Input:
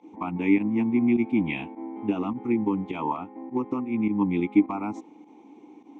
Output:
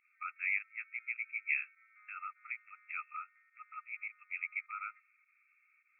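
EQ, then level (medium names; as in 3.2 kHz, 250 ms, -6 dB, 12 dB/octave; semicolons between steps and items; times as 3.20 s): brick-wall FIR band-pass 1.2–2.7 kHz; +1.0 dB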